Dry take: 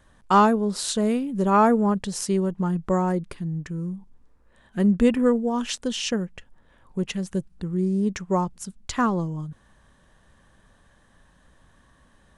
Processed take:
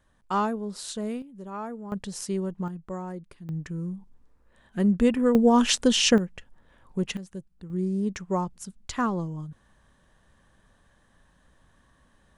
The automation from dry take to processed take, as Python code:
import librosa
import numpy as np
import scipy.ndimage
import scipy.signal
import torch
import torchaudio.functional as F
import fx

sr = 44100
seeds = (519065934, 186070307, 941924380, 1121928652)

y = fx.gain(x, sr, db=fx.steps((0.0, -9.0), (1.22, -18.0), (1.92, -6.0), (2.68, -12.5), (3.49, -2.5), (5.35, 6.5), (6.18, -1.0), (7.17, -11.5), (7.7, -4.0)))